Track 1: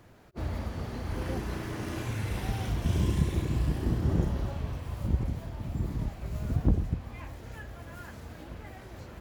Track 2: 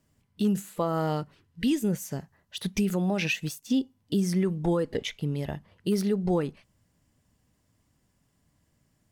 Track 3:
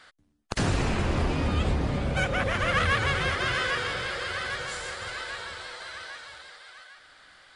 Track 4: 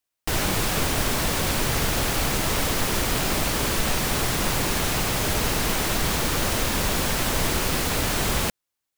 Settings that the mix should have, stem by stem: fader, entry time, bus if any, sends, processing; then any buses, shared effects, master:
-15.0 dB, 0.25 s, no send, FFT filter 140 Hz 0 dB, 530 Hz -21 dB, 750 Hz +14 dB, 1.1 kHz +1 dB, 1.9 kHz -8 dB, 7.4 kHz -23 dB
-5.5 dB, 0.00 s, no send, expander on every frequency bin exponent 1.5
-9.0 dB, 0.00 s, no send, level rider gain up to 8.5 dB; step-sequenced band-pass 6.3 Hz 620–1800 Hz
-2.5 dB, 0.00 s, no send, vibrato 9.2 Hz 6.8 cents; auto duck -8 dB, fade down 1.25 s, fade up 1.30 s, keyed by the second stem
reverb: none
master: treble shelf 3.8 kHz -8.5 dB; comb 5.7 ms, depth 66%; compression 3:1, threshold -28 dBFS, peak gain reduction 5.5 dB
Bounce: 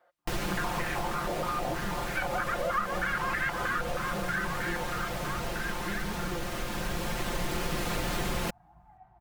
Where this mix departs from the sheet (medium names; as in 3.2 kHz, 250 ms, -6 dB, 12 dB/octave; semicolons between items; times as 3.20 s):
stem 2 -5.5 dB -> -14.5 dB; stem 3 -9.0 dB -> 0.0 dB